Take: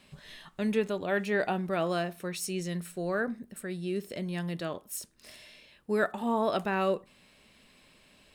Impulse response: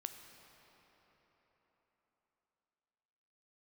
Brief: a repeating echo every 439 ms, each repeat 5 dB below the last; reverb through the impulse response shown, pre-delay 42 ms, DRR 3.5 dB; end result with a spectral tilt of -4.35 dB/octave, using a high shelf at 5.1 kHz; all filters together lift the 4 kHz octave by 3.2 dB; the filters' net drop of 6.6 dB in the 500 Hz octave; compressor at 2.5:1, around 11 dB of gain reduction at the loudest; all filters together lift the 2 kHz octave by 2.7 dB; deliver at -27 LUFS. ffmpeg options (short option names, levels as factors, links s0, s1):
-filter_complex "[0:a]equalizer=f=500:t=o:g=-9,equalizer=f=2000:t=o:g=4,equalizer=f=4000:t=o:g=6,highshelf=f=5100:g=-7.5,acompressor=threshold=0.00891:ratio=2.5,aecho=1:1:439|878|1317|1756|2195|2634|3073:0.562|0.315|0.176|0.0988|0.0553|0.031|0.0173,asplit=2[s0][s1];[1:a]atrim=start_sample=2205,adelay=42[s2];[s1][s2]afir=irnorm=-1:irlink=0,volume=0.944[s3];[s0][s3]amix=inputs=2:normalize=0,volume=4.22"